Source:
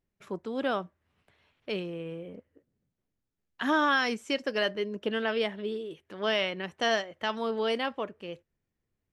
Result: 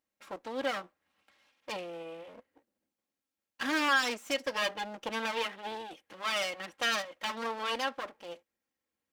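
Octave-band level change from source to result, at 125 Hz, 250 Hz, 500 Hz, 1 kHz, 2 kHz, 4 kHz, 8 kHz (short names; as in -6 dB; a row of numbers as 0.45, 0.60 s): under -10 dB, -7.0 dB, -7.0 dB, -2.0 dB, -1.5 dB, -1.0 dB, +6.5 dB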